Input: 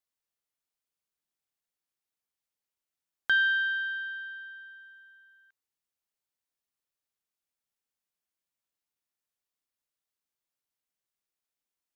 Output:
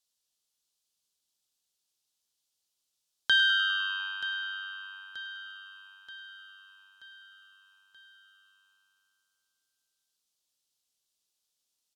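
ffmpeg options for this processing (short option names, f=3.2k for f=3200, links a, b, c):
-filter_complex "[0:a]aemphasis=mode=reproduction:type=75fm,asplit=2[a][b];[b]aecho=0:1:930|1860|2790|3720|4650:0.2|0.108|0.0582|0.0314|0.017[c];[a][c]amix=inputs=2:normalize=0,aexciter=amount=5.5:drive=8.9:freq=3.1k,asplit=2[d][e];[e]asplit=7[f][g][h][i][j][k][l];[f]adelay=100,afreqshift=-97,volume=-14dB[m];[g]adelay=200,afreqshift=-194,volume=-18.2dB[n];[h]adelay=300,afreqshift=-291,volume=-22.3dB[o];[i]adelay=400,afreqshift=-388,volume=-26.5dB[p];[j]adelay=500,afreqshift=-485,volume=-30.6dB[q];[k]adelay=600,afreqshift=-582,volume=-34.8dB[r];[l]adelay=700,afreqshift=-679,volume=-38.9dB[s];[m][n][o][p][q][r][s]amix=inputs=7:normalize=0[t];[d][t]amix=inputs=2:normalize=0"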